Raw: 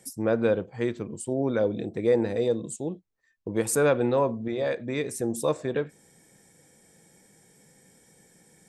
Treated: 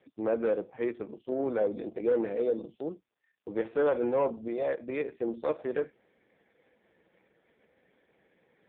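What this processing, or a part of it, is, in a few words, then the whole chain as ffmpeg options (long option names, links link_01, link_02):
telephone: -af "highpass=310,lowpass=3200,asoftclip=type=tanh:threshold=-19dB" -ar 8000 -c:a libopencore_amrnb -b:a 4750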